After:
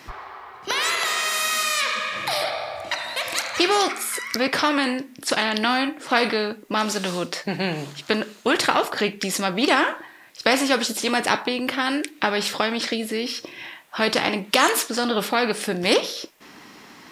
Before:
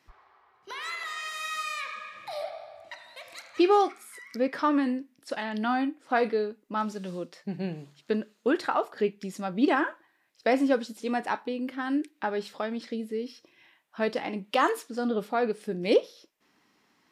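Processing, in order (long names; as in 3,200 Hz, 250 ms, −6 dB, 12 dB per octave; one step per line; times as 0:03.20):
every bin compressed towards the loudest bin 2 to 1
level +8 dB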